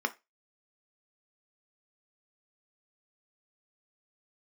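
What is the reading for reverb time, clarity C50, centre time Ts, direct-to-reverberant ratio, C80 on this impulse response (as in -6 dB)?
0.20 s, 19.0 dB, 4 ms, 7.0 dB, 27.5 dB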